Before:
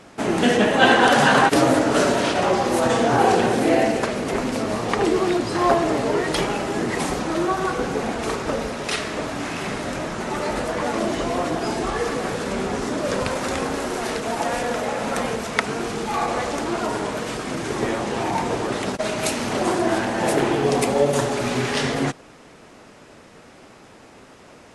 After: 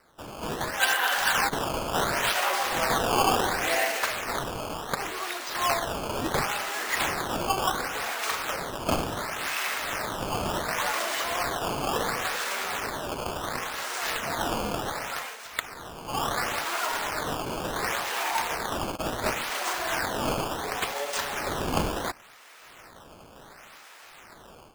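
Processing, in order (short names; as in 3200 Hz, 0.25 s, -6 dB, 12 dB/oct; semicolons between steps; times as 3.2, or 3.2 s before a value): HPF 1200 Hz 12 dB/oct; AGC gain up to 12.5 dB; decimation with a swept rate 13×, swing 160% 0.7 Hz; gain -9 dB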